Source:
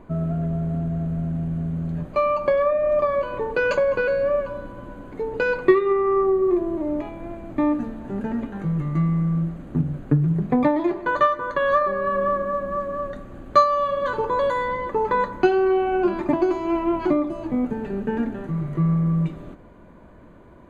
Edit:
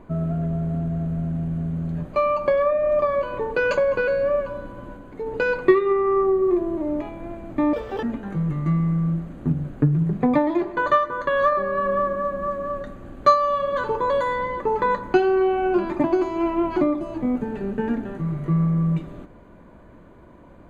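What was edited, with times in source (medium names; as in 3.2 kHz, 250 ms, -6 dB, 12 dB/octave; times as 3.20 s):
4.97–5.26 s: gain -3 dB
7.73–8.32 s: speed 198%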